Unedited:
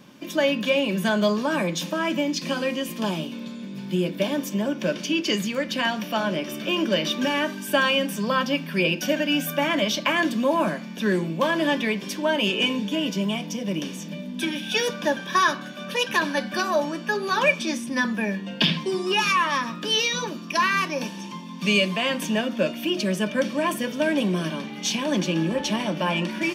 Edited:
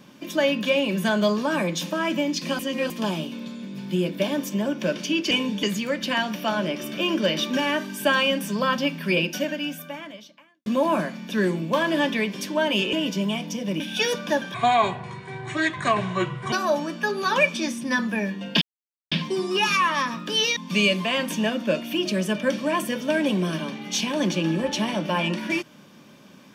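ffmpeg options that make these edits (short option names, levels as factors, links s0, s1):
-filter_complex "[0:a]asplit=12[s0][s1][s2][s3][s4][s5][s6][s7][s8][s9][s10][s11];[s0]atrim=end=2.592[s12];[s1]atrim=start=2.588:end=2.902,asetpts=PTS-STARTPTS,areverse[s13];[s2]atrim=start=2.898:end=5.312[s14];[s3]atrim=start=12.608:end=12.932[s15];[s4]atrim=start=5.308:end=10.34,asetpts=PTS-STARTPTS,afade=t=out:st=3.562:d=1.47:c=qua[s16];[s5]atrim=start=10.34:end=12.612,asetpts=PTS-STARTPTS,afade=t=in:d=0.004:c=hsin[s17];[s6]atrim=start=12.928:end=13.802[s18];[s7]atrim=start=14.548:end=15.294[s19];[s8]atrim=start=15.29:end=16.58,asetpts=PTS-STARTPTS,asetrate=28665,aresample=44100[s20];[s9]atrim=start=16.576:end=18.67,asetpts=PTS-STARTPTS,afade=t=out:st=2.09:d=0.004:c=hsin,apad=pad_dur=0.5[s21];[s10]atrim=start=18.67:end=20.122,asetpts=PTS-STARTPTS,afade=t=in:d=0.004:c=hsin[s22];[s11]atrim=start=21.478[s23];[s12][s13]acrossfade=d=0.004:c1=hsin:c2=hsin[s24];[s24][s14]acrossfade=d=0.004:c1=hsin:c2=hsin[s25];[s25][s15]acrossfade=d=0.004:c1=hsin:c2=hsin[s26];[s16][s17]concat=n=2:v=0:a=1[s27];[s26][s27]acrossfade=d=0.004:c1=hsin:c2=hsin[s28];[s28][s18]acrossfade=d=0.004:c1=hsin:c2=hsin[s29];[s29][s19]acrossfade=d=0.004:c1=hsin:c2=hsin[s30];[s30][s20]acrossfade=d=0.004:c1=hsin:c2=hsin[s31];[s21][s22]concat=n=2:v=0:a=1[s32];[s31][s32]acrossfade=d=0.004:c1=hsin:c2=hsin[s33];[s33][s23]acrossfade=d=0.004:c1=hsin:c2=hsin"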